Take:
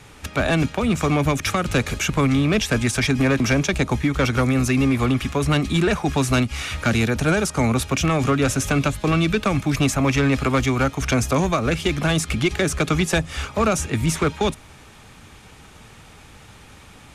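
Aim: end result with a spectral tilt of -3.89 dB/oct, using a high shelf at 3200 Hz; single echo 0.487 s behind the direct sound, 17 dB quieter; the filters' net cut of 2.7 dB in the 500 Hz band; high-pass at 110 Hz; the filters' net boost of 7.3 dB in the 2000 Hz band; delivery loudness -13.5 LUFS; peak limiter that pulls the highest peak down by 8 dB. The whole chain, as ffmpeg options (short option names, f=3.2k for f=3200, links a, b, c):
-af "highpass=110,equalizer=f=500:t=o:g=-4,equalizer=f=2k:t=o:g=8.5,highshelf=f=3.2k:g=3,alimiter=limit=-10.5dB:level=0:latency=1,aecho=1:1:487:0.141,volume=7.5dB"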